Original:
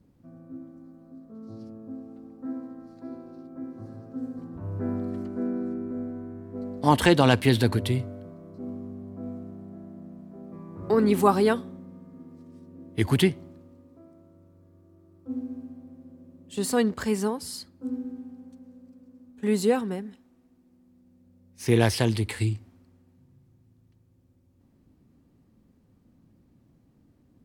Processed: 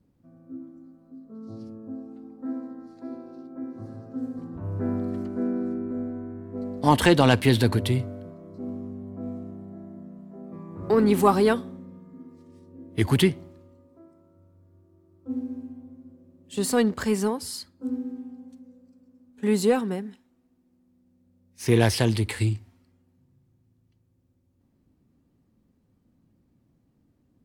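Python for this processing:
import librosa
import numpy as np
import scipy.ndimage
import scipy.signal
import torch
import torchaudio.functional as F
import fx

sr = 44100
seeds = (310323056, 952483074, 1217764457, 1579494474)

p1 = fx.noise_reduce_blind(x, sr, reduce_db=7)
p2 = np.clip(p1, -10.0 ** (-21.5 / 20.0), 10.0 ** (-21.5 / 20.0))
y = p1 + (p2 * 10.0 ** (-11.0 / 20.0))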